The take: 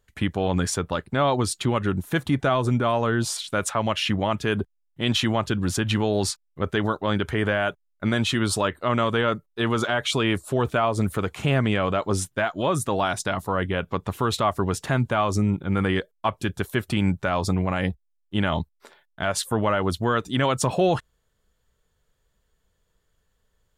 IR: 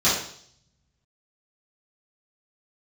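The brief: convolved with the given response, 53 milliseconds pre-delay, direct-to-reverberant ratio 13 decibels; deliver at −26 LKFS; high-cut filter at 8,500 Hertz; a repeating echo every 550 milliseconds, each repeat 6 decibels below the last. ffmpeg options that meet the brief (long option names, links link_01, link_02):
-filter_complex "[0:a]lowpass=8500,aecho=1:1:550|1100|1650|2200|2750|3300:0.501|0.251|0.125|0.0626|0.0313|0.0157,asplit=2[link_01][link_02];[1:a]atrim=start_sample=2205,adelay=53[link_03];[link_02][link_03]afir=irnorm=-1:irlink=0,volume=-30.5dB[link_04];[link_01][link_04]amix=inputs=2:normalize=0,volume=-2.5dB"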